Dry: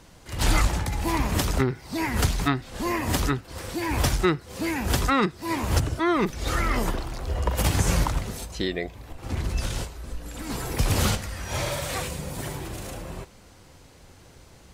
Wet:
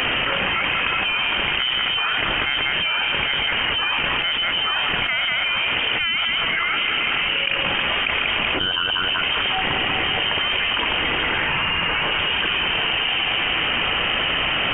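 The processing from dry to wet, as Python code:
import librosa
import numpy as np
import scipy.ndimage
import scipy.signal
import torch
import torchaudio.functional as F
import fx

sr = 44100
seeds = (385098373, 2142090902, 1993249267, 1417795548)

y = scipy.signal.sosfilt(scipy.signal.butter(4, 230.0, 'highpass', fs=sr, output='sos'), x)
y = fx.low_shelf(y, sr, hz=440.0, db=-7.5)
y = fx.echo_split(y, sr, split_hz=890.0, low_ms=146, high_ms=190, feedback_pct=52, wet_db=-9.0)
y = fx.freq_invert(y, sr, carrier_hz=3400)
y = fx.env_flatten(y, sr, amount_pct=100)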